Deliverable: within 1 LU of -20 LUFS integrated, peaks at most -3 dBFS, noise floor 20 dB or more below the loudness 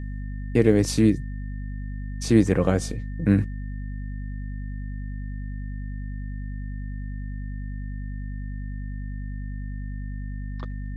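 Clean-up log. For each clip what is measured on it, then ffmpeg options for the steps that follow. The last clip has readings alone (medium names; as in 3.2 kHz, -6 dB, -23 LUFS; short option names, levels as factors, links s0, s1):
hum 50 Hz; highest harmonic 250 Hz; hum level -29 dBFS; steady tone 1.8 kHz; tone level -50 dBFS; loudness -28.0 LUFS; peak level -4.5 dBFS; loudness target -20.0 LUFS
-> -af "bandreject=f=50:t=h:w=6,bandreject=f=100:t=h:w=6,bandreject=f=150:t=h:w=6,bandreject=f=200:t=h:w=6,bandreject=f=250:t=h:w=6"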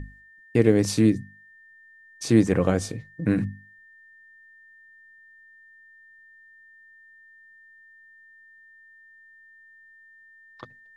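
hum not found; steady tone 1.8 kHz; tone level -50 dBFS
-> -af "bandreject=f=1800:w=30"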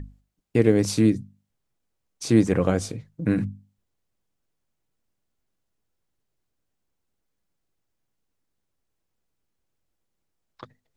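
steady tone not found; loudness -23.0 LUFS; peak level -5.0 dBFS; loudness target -20.0 LUFS
-> -af "volume=1.41,alimiter=limit=0.708:level=0:latency=1"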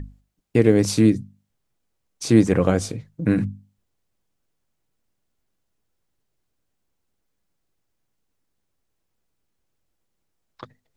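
loudness -20.0 LUFS; peak level -3.0 dBFS; noise floor -75 dBFS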